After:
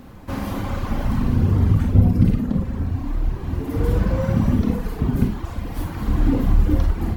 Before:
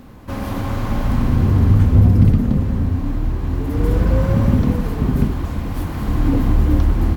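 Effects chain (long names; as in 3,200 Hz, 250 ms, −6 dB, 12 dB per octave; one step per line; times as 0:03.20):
echo ahead of the sound 137 ms −22 dB
reverb reduction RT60 1.9 s
four-comb reverb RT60 0.33 s, combs from 33 ms, DRR 4 dB
level −1 dB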